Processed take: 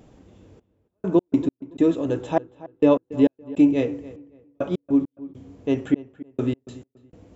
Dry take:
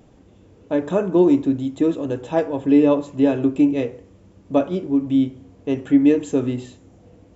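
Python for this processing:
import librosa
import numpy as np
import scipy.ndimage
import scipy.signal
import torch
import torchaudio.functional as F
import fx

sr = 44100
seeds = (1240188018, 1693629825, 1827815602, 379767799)

p1 = fx.step_gate(x, sr, bpm=101, pattern='xxxx...x.x..', floor_db=-60.0, edge_ms=4.5)
y = p1 + fx.echo_filtered(p1, sr, ms=282, feedback_pct=24, hz=2300.0, wet_db=-17.5, dry=0)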